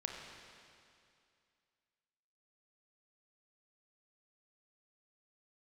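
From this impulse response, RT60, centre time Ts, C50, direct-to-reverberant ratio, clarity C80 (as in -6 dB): 2.4 s, 88 ms, 2.0 dB, 0.5 dB, 3.0 dB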